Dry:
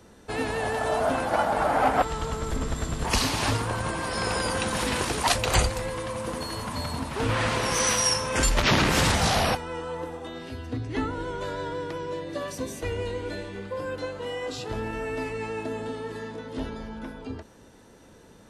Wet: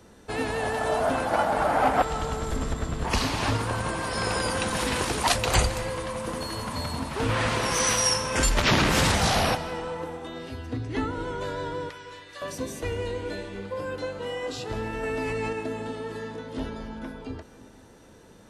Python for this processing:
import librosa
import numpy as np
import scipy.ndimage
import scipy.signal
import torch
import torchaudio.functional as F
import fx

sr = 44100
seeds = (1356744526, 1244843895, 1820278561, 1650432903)

y = fx.high_shelf(x, sr, hz=fx.line((2.72, 3800.0), (3.59, 5800.0)), db=-8.0, at=(2.72, 3.59), fade=0.02)
y = fx.cheby1_highpass(y, sr, hz=1500.0, order=2, at=(11.89, 12.42))
y = fx.rev_freeverb(y, sr, rt60_s=2.1, hf_ratio=0.7, predelay_ms=115, drr_db=14.0)
y = fx.env_flatten(y, sr, amount_pct=100, at=(15.03, 15.53))